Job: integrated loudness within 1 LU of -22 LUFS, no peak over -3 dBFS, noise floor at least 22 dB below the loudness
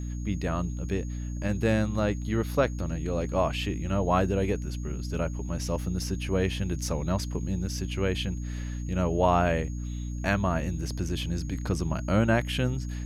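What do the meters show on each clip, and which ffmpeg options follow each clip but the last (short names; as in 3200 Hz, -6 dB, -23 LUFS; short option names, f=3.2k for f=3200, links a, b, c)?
hum 60 Hz; harmonics up to 300 Hz; hum level -31 dBFS; steady tone 6600 Hz; tone level -51 dBFS; loudness -29.0 LUFS; peak -10.0 dBFS; loudness target -22.0 LUFS
-> -af "bandreject=f=60:t=h:w=4,bandreject=f=120:t=h:w=4,bandreject=f=180:t=h:w=4,bandreject=f=240:t=h:w=4,bandreject=f=300:t=h:w=4"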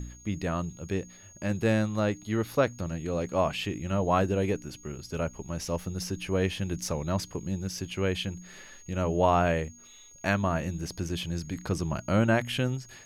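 hum none; steady tone 6600 Hz; tone level -51 dBFS
-> -af "bandreject=f=6.6k:w=30"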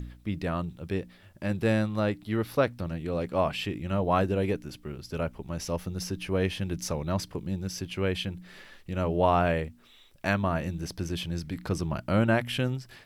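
steady tone none; loudness -29.5 LUFS; peak -11.0 dBFS; loudness target -22.0 LUFS
-> -af "volume=7.5dB"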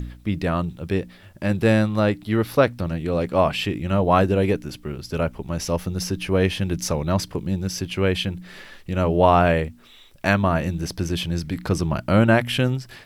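loudness -22.0 LUFS; peak -3.5 dBFS; noise floor -48 dBFS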